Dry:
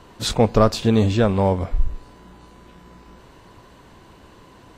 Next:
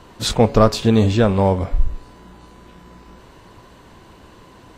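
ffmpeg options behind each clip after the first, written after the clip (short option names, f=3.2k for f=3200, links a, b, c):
-af "bandreject=f=140.8:t=h:w=4,bandreject=f=281.6:t=h:w=4,bandreject=f=422.4:t=h:w=4,bandreject=f=563.2:t=h:w=4,bandreject=f=704:t=h:w=4,bandreject=f=844.8:t=h:w=4,bandreject=f=985.6:t=h:w=4,bandreject=f=1.1264k:t=h:w=4,bandreject=f=1.2672k:t=h:w=4,bandreject=f=1.408k:t=h:w=4,bandreject=f=1.5488k:t=h:w=4,bandreject=f=1.6896k:t=h:w=4,bandreject=f=1.8304k:t=h:w=4,bandreject=f=1.9712k:t=h:w=4,bandreject=f=2.112k:t=h:w=4,bandreject=f=2.2528k:t=h:w=4,bandreject=f=2.3936k:t=h:w=4,bandreject=f=2.5344k:t=h:w=4,bandreject=f=2.6752k:t=h:w=4,bandreject=f=2.816k:t=h:w=4,bandreject=f=2.9568k:t=h:w=4,bandreject=f=3.0976k:t=h:w=4,volume=2.5dB"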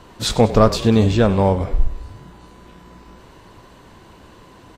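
-filter_complex "[0:a]asplit=6[a][b][c][d][e][f];[b]adelay=96,afreqshift=-39,volume=-16dB[g];[c]adelay=192,afreqshift=-78,volume=-21.7dB[h];[d]adelay=288,afreqshift=-117,volume=-27.4dB[i];[e]adelay=384,afreqshift=-156,volume=-33dB[j];[f]adelay=480,afreqshift=-195,volume=-38.7dB[k];[a][g][h][i][j][k]amix=inputs=6:normalize=0"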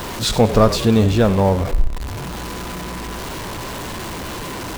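-af "aeval=exprs='val(0)+0.5*0.075*sgn(val(0))':c=same,volume=-1dB"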